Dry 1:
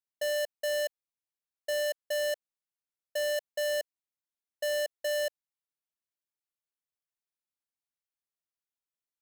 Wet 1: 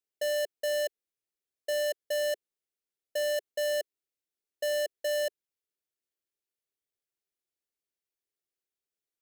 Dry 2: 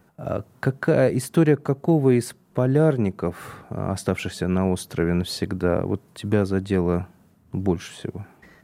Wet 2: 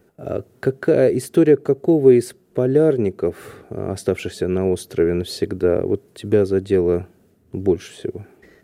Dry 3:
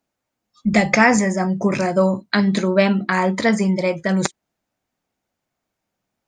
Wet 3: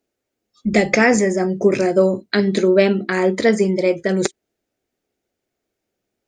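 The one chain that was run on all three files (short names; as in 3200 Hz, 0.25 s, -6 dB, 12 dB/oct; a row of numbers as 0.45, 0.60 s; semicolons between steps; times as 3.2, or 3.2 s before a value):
fifteen-band EQ 160 Hz -5 dB, 400 Hz +10 dB, 1000 Hz -9 dB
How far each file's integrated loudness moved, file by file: +0.5, +4.0, +1.0 LU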